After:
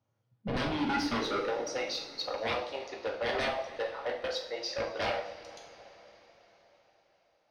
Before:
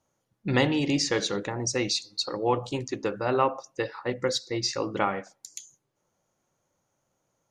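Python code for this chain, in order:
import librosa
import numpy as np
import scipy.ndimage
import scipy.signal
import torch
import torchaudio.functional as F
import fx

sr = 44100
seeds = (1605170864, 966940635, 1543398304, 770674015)

y = fx.filter_sweep_highpass(x, sr, from_hz=110.0, to_hz=650.0, start_s=0.21, end_s=1.74, q=5.9)
y = 10.0 ** (-20.0 / 20.0) * (np.abs((y / 10.0 ** (-20.0 / 20.0) + 3.0) % 4.0 - 2.0) - 1.0)
y = scipy.signal.savgol_filter(y, 15, 4, mode='constant')
y = fx.rev_double_slope(y, sr, seeds[0], early_s=0.47, late_s=4.8, knee_db=-19, drr_db=0.5)
y = y * librosa.db_to_amplitude(-8.0)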